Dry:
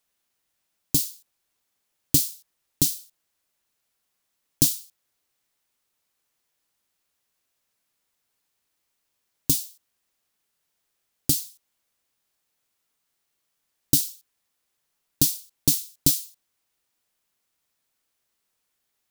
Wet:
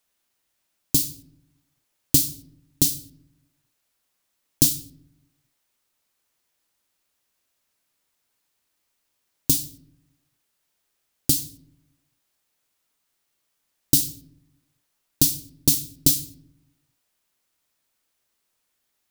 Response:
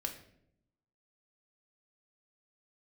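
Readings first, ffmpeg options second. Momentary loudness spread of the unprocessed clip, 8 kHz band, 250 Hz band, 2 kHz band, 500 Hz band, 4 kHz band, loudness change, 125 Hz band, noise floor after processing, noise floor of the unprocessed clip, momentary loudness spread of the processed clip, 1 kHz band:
11 LU, +2.0 dB, +2.5 dB, +2.0 dB, +2.0 dB, +2.0 dB, +2.0 dB, +2.0 dB, -75 dBFS, -77 dBFS, 11 LU, n/a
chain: -filter_complex "[0:a]asplit=2[a][b];[1:a]atrim=start_sample=2205[c];[b][c]afir=irnorm=-1:irlink=0,volume=-6.5dB[d];[a][d]amix=inputs=2:normalize=0,volume=-1dB"

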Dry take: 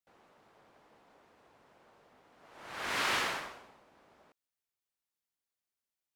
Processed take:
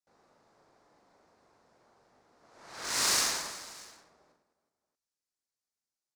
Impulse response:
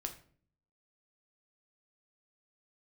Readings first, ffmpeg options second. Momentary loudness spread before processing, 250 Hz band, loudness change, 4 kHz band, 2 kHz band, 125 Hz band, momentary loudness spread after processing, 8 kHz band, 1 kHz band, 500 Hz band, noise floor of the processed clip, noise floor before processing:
17 LU, -0.5 dB, +4.5 dB, +6.0 dB, -2.0 dB, 0.0 dB, 20 LU, +15.0 dB, -2.0 dB, -1.5 dB, under -85 dBFS, under -85 dBFS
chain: -af "aexciter=amount=11.7:drive=4.2:freq=4.5k,adynamicsmooth=sensitivity=3.5:basefreq=2.9k,aecho=1:1:40|104|206.4|370.2|632.4:0.631|0.398|0.251|0.158|0.1,volume=-4dB"

